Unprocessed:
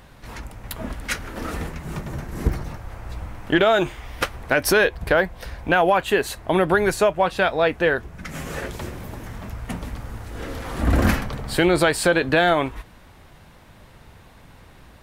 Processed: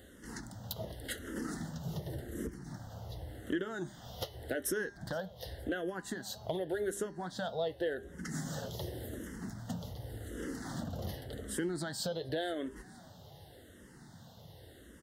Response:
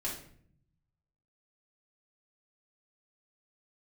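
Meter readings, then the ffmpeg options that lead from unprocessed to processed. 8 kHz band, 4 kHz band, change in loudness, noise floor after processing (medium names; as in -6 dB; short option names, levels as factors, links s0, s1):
-11.0 dB, -15.0 dB, -18.0 dB, -56 dBFS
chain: -filter_complex "[0:a]equalizer=f=1100:w=1.6:g=-13,acompressor=threshold=0.0282:ratio=5,asuperstop=centerf=2400:order=4:qfactor=2.3,bandreject=f=200.9:t=h:w=4,bandreject=f=401.8:t=h:w=4,bandreject=f=602.7:t=h:w=4,bandreject=f=803.6:t=h:w=4,bandreject=f=1004.5:t=h:w=4,bandreject=f=1205.4:t=h:w=4,bandreject=f=1406.3:t=h:w=4,bandreject=f=1607.2:t=h:w=4,bandreject=f=1808.1:t=h:w=4,bandreject=f=2009:t=h:w=4,bandreject=f=2209.9:t=h:w=4,bandreject=f=2410.8:t=h:w=4,bandreject=f=2611.7:t=h:w=4,bandreject=f=2812.6:t=h:w=4,bandreject=f=3013.5:t=h:w=4,bandreject=f=3214.4:t=h:w=4,bandreject=f=3415.3:t=h:w=4,bandreject=f=3616.2:t=h:w=4,bandreject=f=3817.1:t=h:w=4,bandreject=f=4018:t=h:w=4,bandreject=f=4218.9:t=h:w=4,bandreject=f=4419.8:t=h:w=4,bandreject=f=4620.7:t=h:w=4,bandreject=f=4821.6:t=h:w=4,bandreject=f=5022.5:t=h:w=4,bandreject=f=5223.4:t=h:w=4,bandreject=f=5424.3:t=h:w=4,bandreject=f=5625.2:t=h:w=4,bandreject=f=5826.1:t=h:w=4,bandreject=f=6027:t=h:w=4,bandreject=f=6227.9:t=h:w=4,bandreject=f=6428.8:t=h:w=4,asplit=4[s0][s1][s2][s3];[s1]adelay=468,afreqshift=64,volume=0.0708[s4];[s2]adelay=936,afreqshift=128,volume=0.0367[s5];[s3]adelay=1404,afreqshift=192,volume=0.0191[s6];[s0][s4][s5][s6]amix=inputs=4:normalize=0,asoftclip=type=hard:threshold=0.0668,highpass=100,asplit=2[s7][s8];[s8]afreqshift=-0.88[s9];[s7][s9]amix=inputs=2:normalize=1"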